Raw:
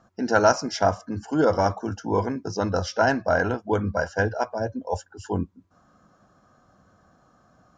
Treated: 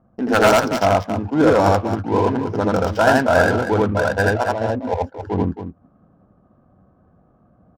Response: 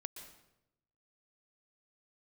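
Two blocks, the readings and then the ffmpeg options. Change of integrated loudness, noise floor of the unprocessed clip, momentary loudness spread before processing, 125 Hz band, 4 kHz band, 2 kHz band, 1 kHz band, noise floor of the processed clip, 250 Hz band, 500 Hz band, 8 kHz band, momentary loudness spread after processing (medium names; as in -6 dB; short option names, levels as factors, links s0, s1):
+6.5 dB, -62 dBFS, 11 LU, +7.0 dB, +6.0 dB, +7.0 dB, +6.5 dB, -57 dBFS, +7.5 dB, +6.5 dB, no reading, 9 LU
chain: -af "adynamicsmooth=sensitivity=4.5:basefreq=600,aeval=exprs='0.266*(abs(mod(val(0)/0.266+3,4)-2)-1)':c=same,aecho=1:1:81.63|271.1:1|0.355,volume=1.58"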